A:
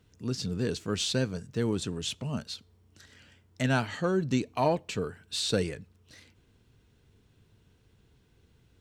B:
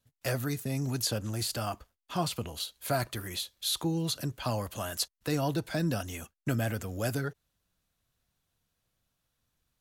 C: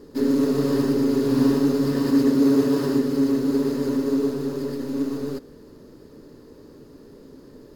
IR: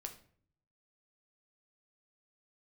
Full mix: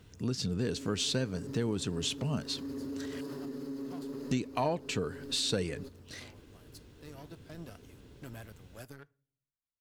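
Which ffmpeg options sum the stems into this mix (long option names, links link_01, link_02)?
-filter_complex "[0:a]acontrast=83,volume=0dB,asplit=3[link_01][link_02][link_03];[link_01]atrim=end=3.21,asetpts=PTS-STARTPTS,afade=type=out:start_time=3.206:duration=0.004:curve=hsin[link_04];[link_02]atrim=start=3.21:end=4.31,asetpts=PTS-STARTPTS,volume=0[link_05];[link_03]atrim=start=4.31,asetpts=PTS-STARTPTS,afade=type=in:duration=0.004:curve=hsin[link_06];[link_04][link_05][link_06]concat=n=3:v=0:a=1,asplit=2[link_07][link_08];[1:a]aeval=exprs='0.141*(cos(1*acos(clip(val(0)/0.141,-1,1)))-cos(1*PI/2))+0.00891*(cos(5*acos(clip(val(0)/0.141,-1,1)))-cos(5*PI/2))+0.02*(cos(7*acos(clip(val(0)/0.141,-1,1)))-cos(7*PI/2))':channel_layout=same,adelay=1750,volume=-18dB,asplit=2[link_09][link_10];[link_10]volume=-10dB[link_11];[2:a]adelay=500,volume=-14dB[link_12];[link_08]apad=whole_len=509590[link_13];[link_09][link_13]sidechaincompress=threshold=-35dB:ratio=8:attack=11:release=1450[link_14];[link_14][link_12]amix=inputs=2:normalize=0,alimiter=level_in=8.5dB:limit=-24dB:level=0:latency=1:release=74,volume=-8.5dB,volume=0dB[link_15];[3:a]atrim=start_sample=2205[link_16];[link_11][link_16]afir=irnorm=-1:irlink=0[link_17];[link_07][link_15][link_17]amix=inputs=3:normalize=0,acompressor=threshold=-33dB:ratio=2.5"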